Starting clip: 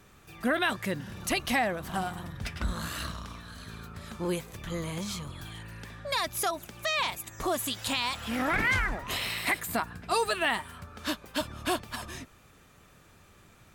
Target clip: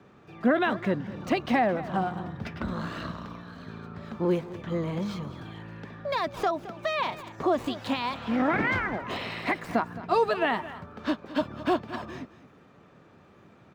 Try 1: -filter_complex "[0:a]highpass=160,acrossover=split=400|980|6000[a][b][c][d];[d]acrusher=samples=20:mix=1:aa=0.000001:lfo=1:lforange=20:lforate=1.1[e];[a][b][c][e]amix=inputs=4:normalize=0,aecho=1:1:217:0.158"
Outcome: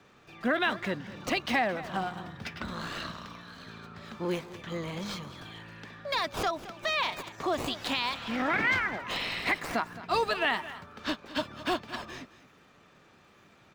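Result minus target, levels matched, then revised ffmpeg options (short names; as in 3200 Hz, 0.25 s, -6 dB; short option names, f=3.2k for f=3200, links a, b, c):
2000 Hz band +4.0 dB
-filter_complex "[0:a]highpass=160,tiltshelf=f=1.5k:g=7.5,acrossover=split=400|980|6000[a][b][c][d];[d]acrusher=samples=20:mix=1:aa=0.000001:lfo=1:lforange=20:lforate=1.1[e];[a][b][c][e]amix=inputs=4:normalize=0,aecho=1:1:217:0.158"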